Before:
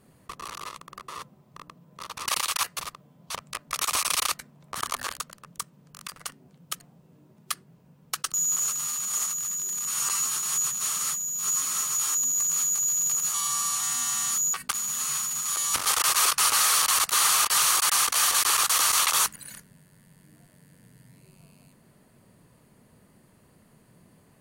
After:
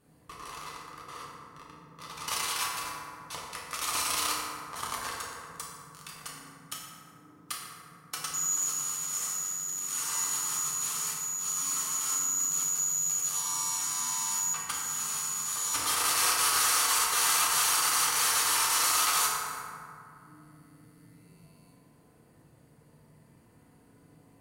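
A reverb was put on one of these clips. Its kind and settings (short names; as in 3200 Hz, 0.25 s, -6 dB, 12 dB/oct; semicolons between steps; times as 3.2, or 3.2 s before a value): FDN reverb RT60 2.5 s, low-frequency decay 0.9×, high-frequency decay 0.4×, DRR -5.5 dB; gain -8.5 dB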